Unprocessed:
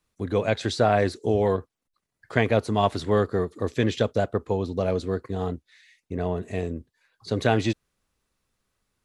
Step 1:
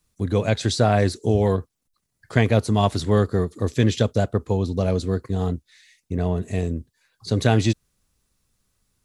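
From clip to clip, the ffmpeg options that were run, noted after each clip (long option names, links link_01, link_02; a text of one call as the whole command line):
ffmpeg -i in.wav -af "bass=frequency=250:gain=8,treble=frequency=4000:gain=9" out.wav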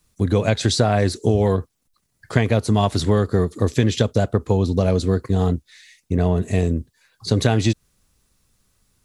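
ffmpeg -i in.wav -af "acompressor=threshold=-19dB:ratio=5,volume=6dB" out.wav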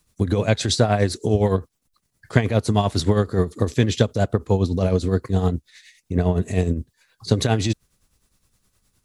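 ffmpeg -i in.wav -af "tremolo=f=9.7:d=0.61,volume=1.5dB" out.wav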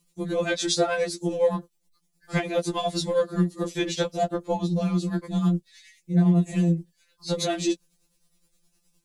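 ffmpeg -i in.wav -filter_complex "[0:a]acrossover=split=130|720|1600[link_01][link_02][link_03][link_04];[link_03]adynamicsmooth=sensitivity=6:basefreq=1200[link_05];[link_01][link_02][link_05][link_04]amix=inputs=4:normalize=0,afftfilt=real='re*2.83*eq(mod(b,8),0)':imag='im*2.83*eq(mod(b,8),0)':win_size=2048:overlap=0.75" out.wav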